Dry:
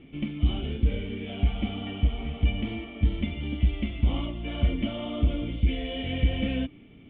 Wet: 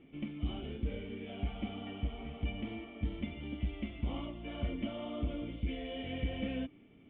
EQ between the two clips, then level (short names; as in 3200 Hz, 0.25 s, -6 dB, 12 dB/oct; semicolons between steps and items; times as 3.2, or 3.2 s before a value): low shelf 180 Hz -9.5 dB; high shelf 3300 Hz -12 dB; -5.0 dB